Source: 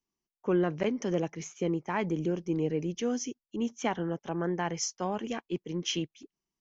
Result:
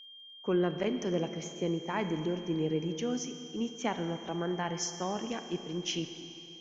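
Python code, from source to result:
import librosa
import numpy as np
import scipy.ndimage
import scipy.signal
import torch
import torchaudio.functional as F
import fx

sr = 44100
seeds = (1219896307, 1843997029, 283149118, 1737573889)

y = fx.dmg_crackle(x, sr, seeds[0], per_s=13.0, level_db=-58.0)
y = fx.rev_schroeder(y, sr, rt60_s=3.0, comb_ms=28, drr_db=8.5)
y = y + 10.0 ** (-46.0 / 20.0) * np.sin(2.0 * np.pi * 3200.0 * np.arange(len(y)) / sr)
y = F.gain(torch.from_numpy(y), -2.5).numpy()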